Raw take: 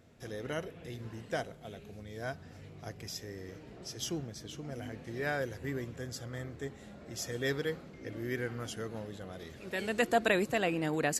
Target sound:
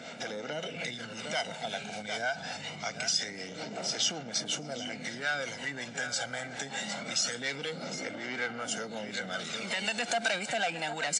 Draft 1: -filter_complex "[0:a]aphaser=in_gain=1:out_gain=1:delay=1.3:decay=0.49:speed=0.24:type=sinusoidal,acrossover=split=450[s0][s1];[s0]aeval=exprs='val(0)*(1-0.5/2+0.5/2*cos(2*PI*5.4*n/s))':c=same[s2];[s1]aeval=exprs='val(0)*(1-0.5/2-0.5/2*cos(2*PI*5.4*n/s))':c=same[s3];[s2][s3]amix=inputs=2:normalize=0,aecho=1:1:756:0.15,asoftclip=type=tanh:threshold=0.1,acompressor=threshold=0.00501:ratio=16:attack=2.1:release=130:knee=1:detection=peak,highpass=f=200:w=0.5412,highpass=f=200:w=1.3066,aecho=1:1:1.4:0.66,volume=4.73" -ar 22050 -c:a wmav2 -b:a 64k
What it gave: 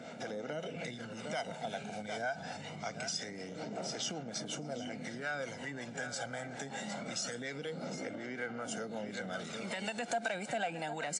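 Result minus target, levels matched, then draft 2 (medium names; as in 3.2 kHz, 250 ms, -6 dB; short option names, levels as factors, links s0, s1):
saturation: distortion -10 dB; 4 kHz band -4.0 dB
-filter_complex "[0:a]aphaser=in_gain=1:out_gain=1:delay=1.3:decay=0.49:speed=0.24:type=sinusoidal,acrossover=split=450[s0][s1];[s0]aeval=exprs='val(0)*(1-0.5/2+0.5/2*cos(2*PI*5.4*n/s))':c=same[s2];[s1]aeval=exprs='val(0)*(1-0.5/2-0.5/2*cos(2*PI*5.4*n/s))':c=same[s3];[s2][s3]amix=inputs=2:normalize=0,aecho=1:1:756:0.15,asoftclip=type=tanh:threshold=0.0355,acompressor=threshold=0.00501:ratio=16:attack=2.1:release=130:knee=1:detection=peak,highpass=f=200:w=0.5412,highpass=f=200:w=1.3066,equalizer=f=3800:w=0.39:g=10,aecho=1:1:1.4:0.66,volume=4.73" -ar 22050 -c:a wmav2 -b:a 64k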